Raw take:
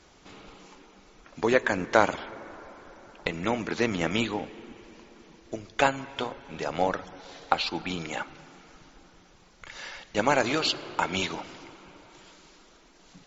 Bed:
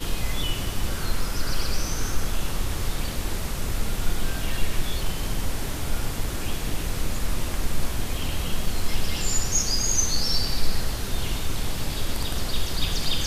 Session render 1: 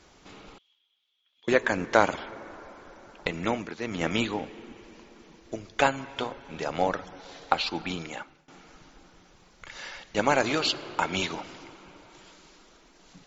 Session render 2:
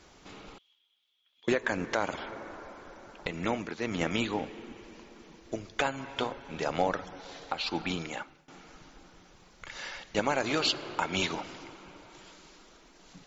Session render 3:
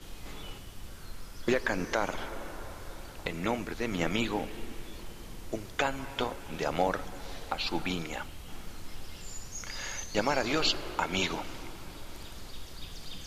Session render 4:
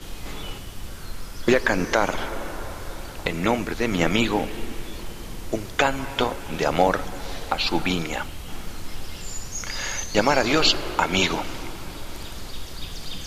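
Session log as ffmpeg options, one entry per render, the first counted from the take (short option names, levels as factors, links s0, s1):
-filter_complex "[0:a]asettb=1/sr,asplit=3[s0][s1][s2];[s0]atrim=end=0.584[s3];[s1]atrim=start=0.58:end=1.48,asetpts=PTS-STARTPTS,afade=t=in:d=0.004:c=qsin,afade=t=out:st=0.896:d=0.004:c=qsin,bandpass=f=3300:t=q:w=18[s4];[s2]atrim=start=1.476[s5];[s3][s4]acrossfade=d=0.004:c1=hsin:c2=qsin[s6];[s6][s5]acrossfade=d=0.004:c1=qsin:c2=hsin,asplit=4[s7][s8][s9][s10];[s7]atrim=end=3.77,asetpts=PTS-STARTPTS,afade=t=out:st=3.5:d=0.27:silence=0.281838[s11];[s8]atrim=start=3.77:end=3.79,asetpts=PTS-STARTPTS,volume=0.282[s12];[s9]atrim=start=3.79:end=8.48,asetpts=PTS-STARTPTS,afade=t=in:d=0.27:silence=0.281838,afade=t=out:st=4.1:d=0.59:silence=0.0794328[s13];[s10]atrim=start=8.48,asetpts=PTS-STARTPTS,afade=t=in:d=0.004:c=hsin:silence=0.0794328[s14];[s11][s12][s13][s14]concat=n=4:v=0:a=1"
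-af "alimiter=limit=0.178:level=0:latency=1:release=219"
-filter_complex "[1:a]volume=0.126[s0];[0:a][s0]amix=inputs=2:normalize=0"
-af "volume=2.82"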